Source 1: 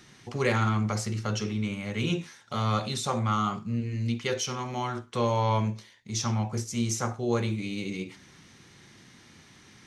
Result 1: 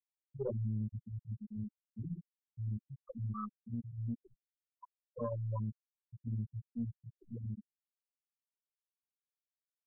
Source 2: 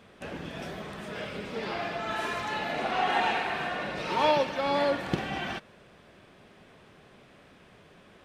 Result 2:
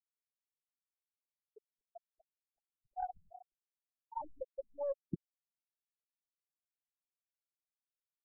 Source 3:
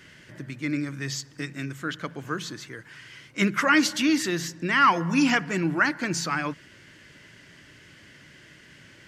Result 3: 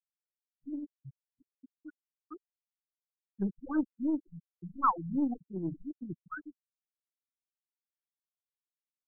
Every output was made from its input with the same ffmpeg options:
-af "afftfilt=real='re*gte(hypot(re,im),0.282)':imag='im*gte(hypot(re,im),0.282)':win_size=1024:overlap=0.75,aeval=exprs='0.355*(cos(1*acos(clip(val(0)/0.355,-1,1)))-cos(1*PI/2))+0.0562*(cos(3*acos(clip(val(0)/0.355,-1,1)))-cos(3*PI/2))+0.0126*(cos(4*acos(clip(val(0)/0.355,-1,1)))-cos(4*PI/2))':c=same,afftfilt=real='re*lt(b*sr/1024,200*pow(1800/200,0.5+0.5*sin(2*PI*2.7*pts/sr)))':imag='im*lt(b*sr/1024,200*pow(1800/200,0.5+0.5*sin(2*PI*2.7*pts/sr)))':win_size=1024:overlap=0.75,volume=-3.5dB"

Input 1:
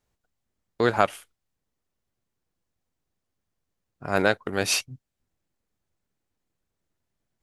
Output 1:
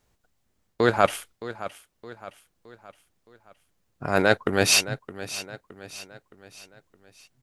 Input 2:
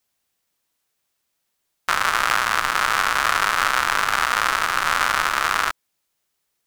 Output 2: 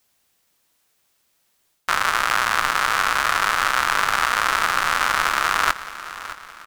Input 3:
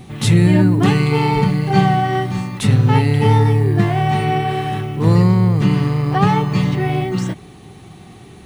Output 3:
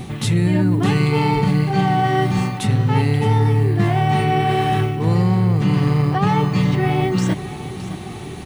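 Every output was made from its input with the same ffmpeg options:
-af "areverse,acompressor=threshold=-23dB:ratio=5,areverse,aecho=1:1:617|1234|1851|2468:0.188|0.0866|0.0399|0.0183,volume=8dB"

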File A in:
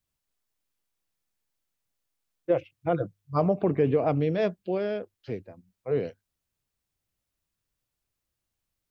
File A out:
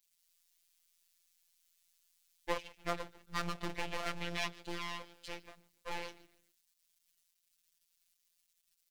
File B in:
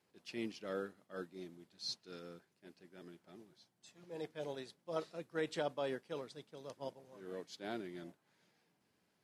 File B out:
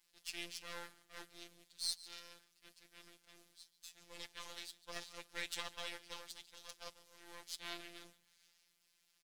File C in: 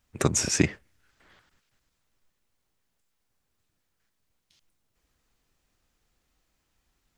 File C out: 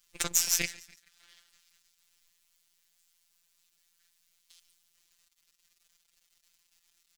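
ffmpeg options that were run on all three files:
-filter_complex "[0:a]asplit=4[a][b][c][d];[b]adelay=144,afreqshift=-60,volume=-20dB[e];[c]adelay=288,afreqshift=-120,volume=-29.6dB[f];[d]adelay=432,afreqshift=-180,volume=-39.3dB[g];[a][e][f][g]amix=inputs=4:normalize=0,aeval=exprs='max(val(0),0)':c=same,crystalizer=i=6:c=0,equalizer=f=3.2k:w=0.38:g=10,asplit=2[h][i];[i]acompressor=threshold=-29dB:ratio=6,volume=3dB[j];[h][j]amix=inputs=2:normalize=0,afftfilt=real='hypot(re,im)*cos(PI*b)':imag='0':win_size=1024:overlap=0.75,volume=-14dB"

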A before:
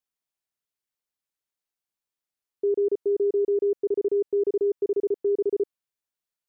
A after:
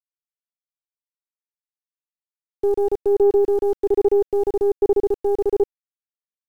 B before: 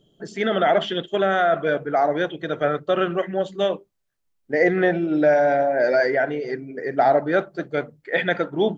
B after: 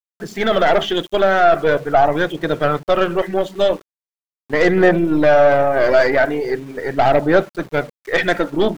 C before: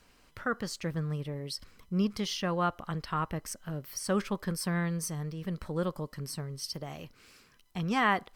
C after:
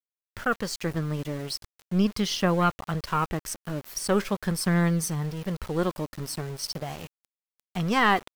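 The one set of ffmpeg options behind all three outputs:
-af "aeval=exprs='0.473*(cos(1*acos(clip(val(0)/0.473,-1,1)))-cos(1*PI/2))+0.0075*(cos(3*acos(clip(val(0)/0.473,-1,1)))-cos(3*PI/2))+0.0211*(cos(5*acos(clip(val(0)/0.473,-1,1)))-cos(5*PI/2))+0.0376*(cos(6*acos(clip(val(0)/0.473,-1,1)))-cos(6*PI/2))':c=same,aphaser=in_gain=1:out_gain=1:delay=3.6:decay=0.29:speed=0.41:type=triangular,aeval=exprs='val(0)*gte(abs(val(0)),0.00794)':c=same,volume=4dB"

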